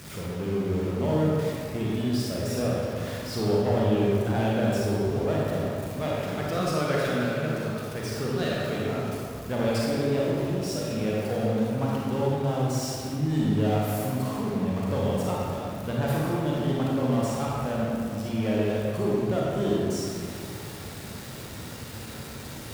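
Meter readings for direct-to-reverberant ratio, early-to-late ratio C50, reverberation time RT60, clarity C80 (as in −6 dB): −5.0 dB, −3.5 dB, 2.3 s, −1.5 dB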